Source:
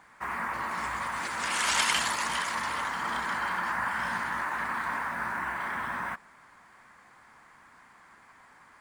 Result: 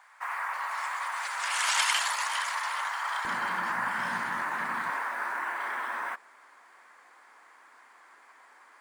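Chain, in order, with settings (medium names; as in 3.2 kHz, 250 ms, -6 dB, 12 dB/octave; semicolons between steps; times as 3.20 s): high-pass 690 Hz 24 dB/octave, from 3.25 s 120 Hz, from 4.90 s 340 Hz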